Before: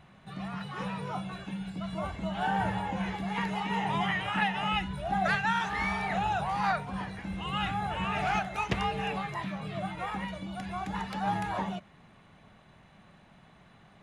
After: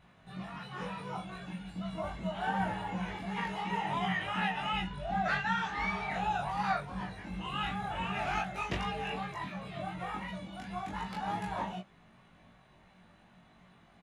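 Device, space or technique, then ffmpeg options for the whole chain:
double-tracked vocal: -filter_complex "[0:a]asplit=2[s0][s1];[s1]adelay=22,volume=0.794[s2];[s0][s2]amix=inputs=2:normalize=0,flanger=delay=16.5:depth=2.5:speed=2.7,asettb=1/sr,asplit=3[s3][s4][s5];[s3]atrim=end=4.874[s6];[s4]atrim=start=4.87:end=6.11,asetpts=PTS-STARTPTS,afade=t=in:d=0.004:c=qsin,afade=t=out:st=1.236:d=0.004:c=qsin,lowpass=7100[s7];[s5]atrim=start=6.106[s8];[s6][s7]acrossfade=d=0.004:c1=hsin:c2=qsin[s9];[s9][s8]acrossfade=d=0.004:c1=qsin:c2=hsin,volume=0.75"

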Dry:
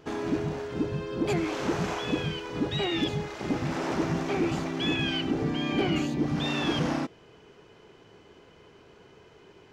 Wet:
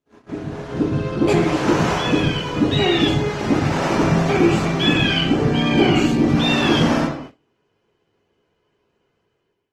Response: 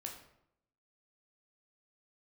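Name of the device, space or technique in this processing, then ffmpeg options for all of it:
speakerphone in a meeting room: -filter_complex "[1:a]atrim=start_sample=2205[s0];[0:a][s0]afir=irnorm=-1:irlink=0,dynaudnorm=f=260:g=5:m=5.31,agate=range=0.0501:threshold=0.02:ratio=16:detection=peak" -ar 48000 -c:a libopus -b:a 20k

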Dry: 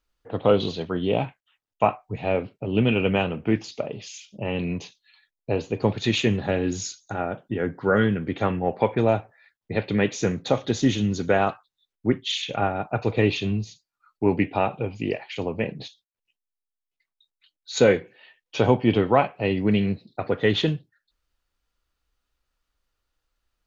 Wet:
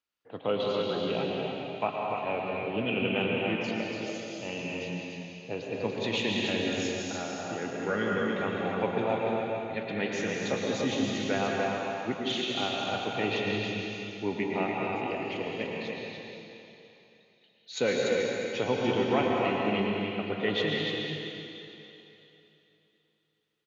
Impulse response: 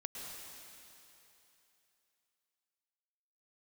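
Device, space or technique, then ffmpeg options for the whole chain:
stadium PA: -filter_complex "[0:a]highpass=150,equalizer=f=2700:t=o:w=1.3:g=5.5,aecho=1:1:207|291.5:0.282|0.562[s0];[1:a]atrim=start_sample=2205[s1];[s0][s1]afir=irnorm=-1:irlink=0,volume=0.473"

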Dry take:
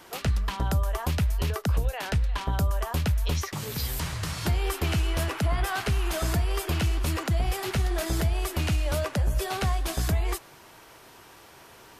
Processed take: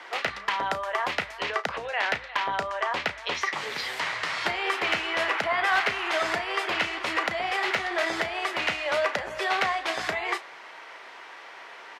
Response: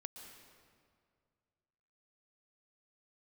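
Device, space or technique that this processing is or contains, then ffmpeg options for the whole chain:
megaphone: -filter_complex "[0:a]asettb=1/sr,asplit=3[s0][s1][s2];[s0]atrim=end=1.424[s3];[s1]atrim=start=1.42:end=3.34,asetpts=PTS-STARTPTS,afade=t=in:d=0.004:c=qsin,afade=t=out:st=1.916:d=0.004:c=qsin,lowpass=8100[s4];[s2]atrim=start=3.336[s5];[s3][s4]acrossfade=d=0.004:c1=hsin:c2=qsin[s6];[s6][s5]acrossfade=d=0.004:c1=qsin:c2=hsin,highpass=620,lowpass=3400,equalizer=f=2000:t=o:w=0.34:g=7,asoftclip=type=hard:threshold=0.0708,asplit=2[s7][s8];[s8]adelay=34,volume=0.237[s9];[s7][s9]amix=inputs=2:normalize=0,volume=2.37"

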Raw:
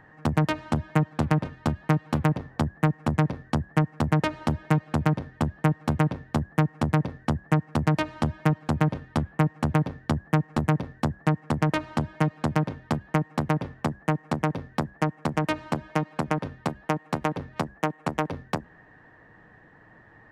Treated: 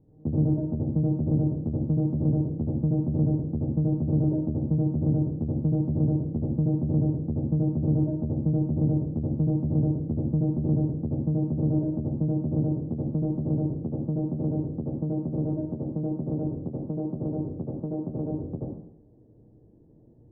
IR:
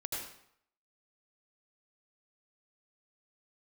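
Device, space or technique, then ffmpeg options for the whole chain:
next room: -filter_complex "[0:a]lowpass=f=440:w=0.5412,lowpass=f=440:w=1.3066[s0];[1:a]atrim=start_sample=2205[s1];[s0][s1]afir=irnorm=-1:irlink=0"

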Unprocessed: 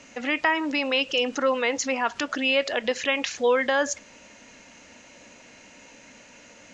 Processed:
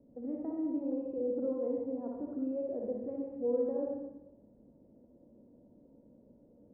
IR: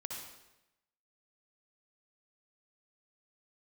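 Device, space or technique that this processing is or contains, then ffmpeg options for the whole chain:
next room: -filter_complex "[0:a]lowpass=f=470:w=0.5412,lowpass=f=470:w=1.3066[s0];[1:a]atrim=start_sample=2205[s1];[s0][s1]afir=irnorm=-1:irlink=0,volume=0.708"

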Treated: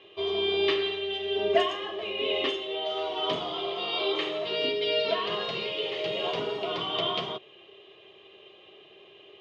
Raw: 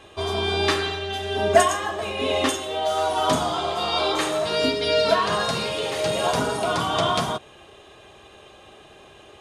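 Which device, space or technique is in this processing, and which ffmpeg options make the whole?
kitchen radio: -af "highpass=170,equalizer=f=250:t=q:w=4:g=-8,equalizer=f=390:t=q:w=4:g=9,equalizer=f=850:t=q:w=4:g=-6,equalizer=f=1500:t=q:w=4:g=-9,equalizer=f=2100:t=q:w=4:g=4,equalizer=f=3000:t=q:w=4:g=10,lowpass=f=4200:w=0.5412,lowpass=f=4200:w=1.3066,volume=0.398"

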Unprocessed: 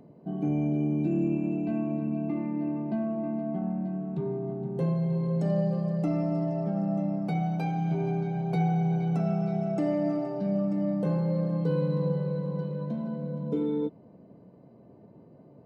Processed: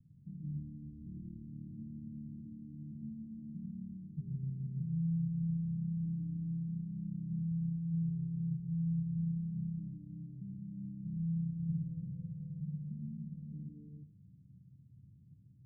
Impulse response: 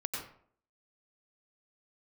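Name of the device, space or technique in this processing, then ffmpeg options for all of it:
club heard from the street: -filter_complex "[0:a]alimiter=level_in=1.06:limit=0.0631:level=0:latency=1:release=18,volume=0.944,lowpass=f=130:w=0.5412,lowpass=f=130:w=1.3066[s0];[1:a]atrim=start_sample=2205[s1];[s0][s1]afir=irnorm=-1:irlink=0,volume=1.12"

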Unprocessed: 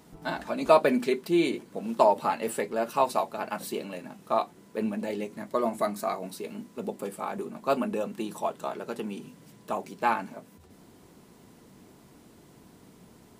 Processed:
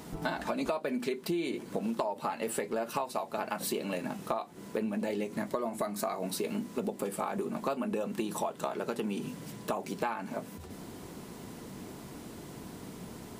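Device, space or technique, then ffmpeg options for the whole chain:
serial compression, leveller first: -af "acompressor=threshold=0.0282:ratio=2,acompressor=threshold=0.0112:ratio=6,volume=2.82"

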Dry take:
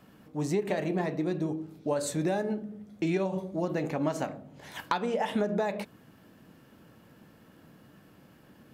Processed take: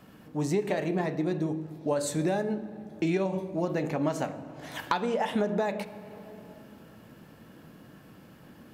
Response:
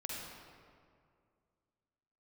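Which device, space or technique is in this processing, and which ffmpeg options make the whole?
compressed reverb return: -filter_complex "[0:a]asplit=2[s0][s1];[1:a]atrim=start_sample=2205[s2];[s1][s2]afir=irnorm=-1:irlink=0,acompressor=threshold=0.0126:ratio=6,volume=0.75[s3];[s0][s3]amix=inputs=2:normalize=0"

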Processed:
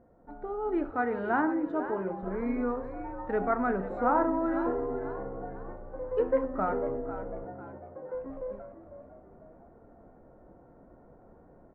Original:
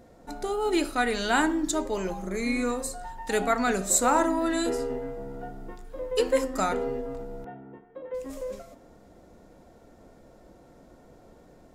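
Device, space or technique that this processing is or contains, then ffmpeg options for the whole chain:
action camera in a waterproof case: -filter_complex "[0:a]asettb=1/sr,asplit=3[s0][s1][s2];[s0]atrim=end=0.914[s3];[s1]atrim=start=0.91:end=2.23,asetpts=PTS-STARTPTS,afade=t=in:d=0.004:c=qsin,afade=t=out:st=1.316:d=0.004:c=qsin,highpass=110[s4];[s2]atrim=start=2.226[s5];[s3][s4]acrossfade=d=0.004:c1=hsin:c2=qsin[s6];[s6][s5]acrossfade=d=0.004:c1=qsin:c2=hsin,asplit=5[s7][s8][s9][s10][s11];[s8]adelay=498,afreqshift=60,volume=0.251[s12];[s9]adelay=996,afreqshift=120,volume=0.106[s13];[s10]adelay=1494,afreqshift=180,volume=0.0442[s14];[s11]adelay=1992,afreqshift=240,volume=0.0186[s15];[s7][s12][s13][s14][s15]amix=inputs=5:normalize=0,lowpass=f=1500:w=0.5412,lowpass=f=1500:w=1.3066,dynaudnorm=f=200:g=7:m=1.78,volume=0.422" -ar 48000 -c:a aac -b:a 64k

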